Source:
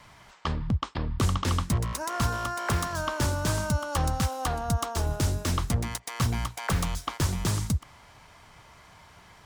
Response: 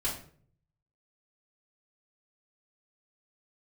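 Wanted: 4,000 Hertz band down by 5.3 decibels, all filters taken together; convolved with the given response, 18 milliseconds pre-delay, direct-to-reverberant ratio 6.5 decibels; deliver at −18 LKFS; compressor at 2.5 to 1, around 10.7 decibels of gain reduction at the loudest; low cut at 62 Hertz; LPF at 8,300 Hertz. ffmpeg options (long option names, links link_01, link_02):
-filter_complex "[0:a]highpass=62,lowpass=8300,equalizer=frequency=4000:width_type=o:gain=-7,acompressor=threshold=-39dB:ratio=2.5,asplit=2[link_01][link_02];[1:a]atrim=start_sample=2205,adelay=18[link_03];[link_02][link_03]afir=irnorm=-1:irlink=0,volume=-11.5dB[link_04];[link_01][link_04]amix=inputs=2:normalize=0,volume=19.5dB"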